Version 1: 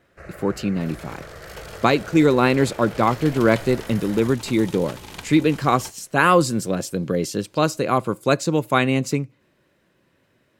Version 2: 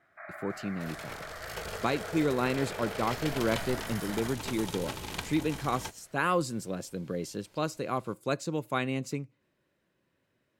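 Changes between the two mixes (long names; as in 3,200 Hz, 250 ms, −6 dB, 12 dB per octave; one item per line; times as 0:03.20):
speech −12.0 dB
first sound: add linear-phase brick-wall band-pass 580–2,500 Hz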